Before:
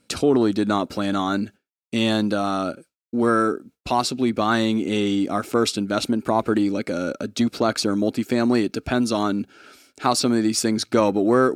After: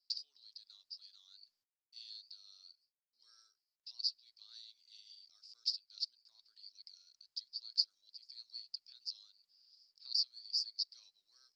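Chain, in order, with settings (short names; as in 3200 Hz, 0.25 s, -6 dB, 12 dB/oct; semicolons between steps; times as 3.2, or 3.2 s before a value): Butterworth band-pass 4800 Hz, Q 7; gain -2 dB; Opus 48 kbps 48000 Hz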